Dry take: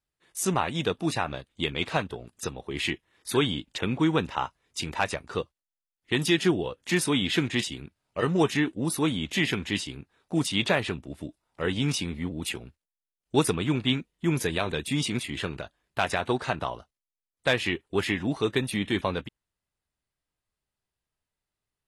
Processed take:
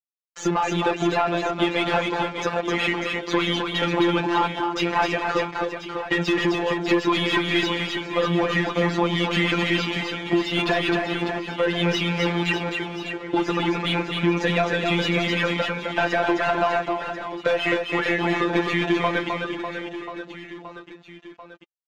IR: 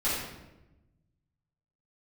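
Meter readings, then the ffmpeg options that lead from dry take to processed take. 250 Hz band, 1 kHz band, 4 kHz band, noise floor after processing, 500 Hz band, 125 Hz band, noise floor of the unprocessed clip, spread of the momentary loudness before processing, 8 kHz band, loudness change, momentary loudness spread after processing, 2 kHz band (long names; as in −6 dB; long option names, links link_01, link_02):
+4.5 dB, +9.0 dB, +4.5 dB, −44 dBFS, +6.5 dB, +2.5 dB, below −85 dBFS, 12 LU, −5.5 dB, +5.0 dB, 7 LU, +7.5 dB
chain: -filter_complex "[0:a]aresample=16000,aeval=exprs='val(0)*gte(abs(val(0)),0.0106)':channel_layout=same,aresample=44100,flanger=delay=1.9:depth=2.5:regen=45:speed=0.17:shape=triangular,afftfilt=real='hypot(re,im)*cos(PI*b)':imag='0':win_size=1024:overlap=0.75,asplit=2[link_01][link_02];[link_02]highpass=frequency=720:poles=1,volume=26dB,asoftclip=type=tanh:threshold=-12dB[link_03];[link_01][link_03]amix=inputs=2:normalize=0,lowpass=frequency=2000:poles=1,volume=-6dB,highshelf=frequency=4600:gain=-11,acompressor=threshold=-27dB:ratio=6,asplit=2[link_04][link_05];[link_05]aecho=0:1:260|598|1037|1609|2351:0.631|0.398|0.251|0.158|0.1[link_06];[link_04][link_06]amix=inputs=2:normalize=0,volume=7.5dB"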